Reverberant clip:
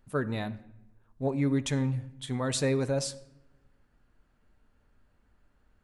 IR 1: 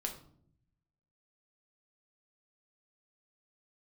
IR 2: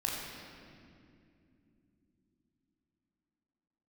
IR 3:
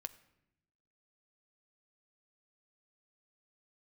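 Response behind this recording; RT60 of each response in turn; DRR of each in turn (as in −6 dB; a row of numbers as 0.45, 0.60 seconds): 3; 0.65, 2.7, 0.85 seconds; 2.0, −3.0, 11.0 decibels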